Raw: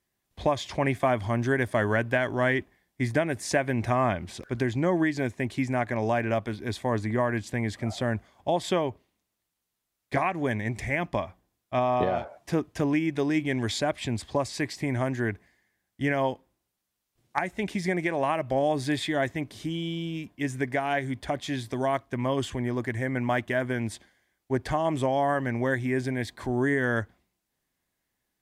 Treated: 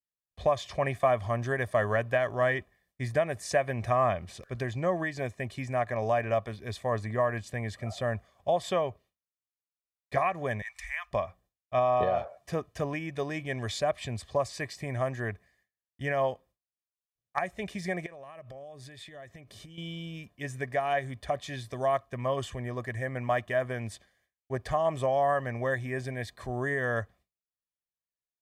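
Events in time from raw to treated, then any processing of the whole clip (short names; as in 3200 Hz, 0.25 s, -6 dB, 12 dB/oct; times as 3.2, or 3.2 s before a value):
10.62–11.11 inverse Chebyshev band-stop 110–490 Hz, stop band 50 dB
18.06–19.78 compressor 10:1, threshold -38 dBFS
whole clip: gate with hold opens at -58 dBFS; dynamic EQ 870 Hz, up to +5 dB, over -37 dBFS, Q 1.2; comb 1.7 ms, depth 59%; gain -6 dB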